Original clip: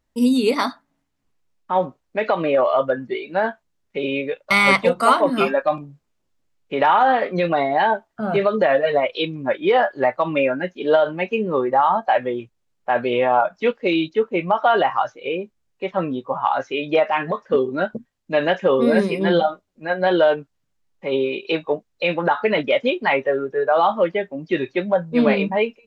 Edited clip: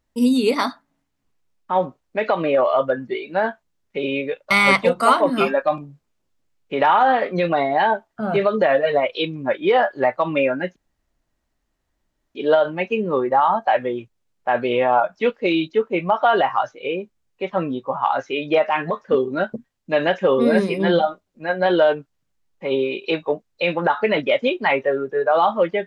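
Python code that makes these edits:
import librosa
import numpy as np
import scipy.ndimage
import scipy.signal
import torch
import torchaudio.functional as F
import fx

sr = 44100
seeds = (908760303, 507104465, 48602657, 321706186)

y = fx.edit(x, sr, fx.insert_room_tone(at_s=10.76, length_s=1.59), tone=tone)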